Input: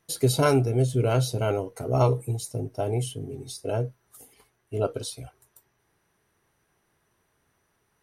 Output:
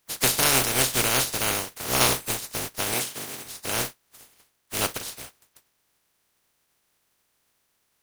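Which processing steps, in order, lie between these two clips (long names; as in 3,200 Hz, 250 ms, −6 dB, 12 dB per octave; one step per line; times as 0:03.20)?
compressing power law on the bin magnitudes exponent 0.19
0:02.94–0:03.45: high-pass filter 130 Hz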